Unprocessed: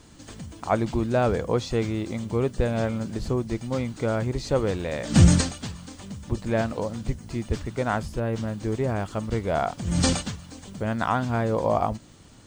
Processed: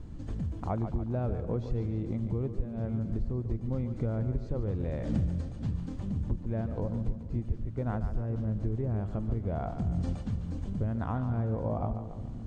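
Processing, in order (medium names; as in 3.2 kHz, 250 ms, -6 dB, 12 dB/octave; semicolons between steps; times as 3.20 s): tilt EQ -4.5 dB/octave; compression 6:1, threshold -23 dBFS, peak gain reduction 26 dB; two-band feedback delay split 360 Hz, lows 525 ms, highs 143 ms, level -9.5 dB; trim -6 dB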